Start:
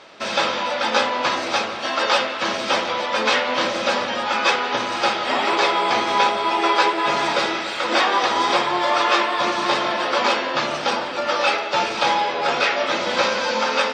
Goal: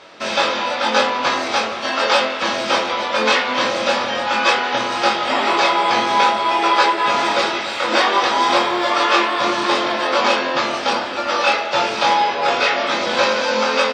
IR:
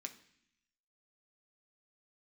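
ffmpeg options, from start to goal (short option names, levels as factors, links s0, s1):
-filter_complex "[0:a]asplit=2[s0][s1];[s1]adelay=23,volume=0.668[s2];[s0][s2]amix=inputs=2:normalize=0,asettb=1/sr,asplit=3[s3][s4][s5];[s3]atrim=end=8.444[s6];[s4]atrim=start=8.44:end=8.9,asetpts=PTS-STARTPTS,afade=t=in:d=0.004:c=qsin,afade=t=out:st=0.456:d=0.004:c=qsin,acrusher=bits=8:mix=0:aa=0.5[s7];[s5]atrim=start=8.896[s8];[s6][s7]acrossfade=d=0.004:c1=hsin:c2=qsin[s9];[s9][s8]acrossfade=d=0.004:c1=qsin:c2=hsin,volume=1.12"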